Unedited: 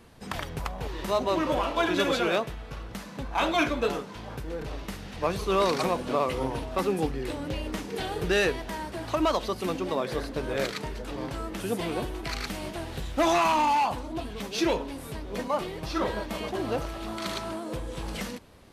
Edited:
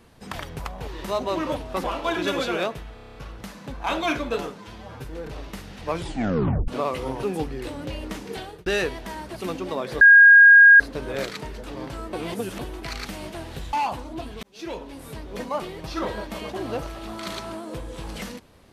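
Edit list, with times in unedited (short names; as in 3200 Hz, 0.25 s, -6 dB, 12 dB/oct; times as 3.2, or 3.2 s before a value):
2.66 stutter 0.03 s, 8 plays
4.09–4.41 stretch 1.5×
5.26 tape stop 0.77 s
6.58–6.86 move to 1.56
7.94–8.29 fade out
8.99–9.56 cut
10.21 add tone 1630 Hz -7 dBFS 0.79 s
11.54–12 reverse
13.14–13.72 cut
14.42–15.09 fade in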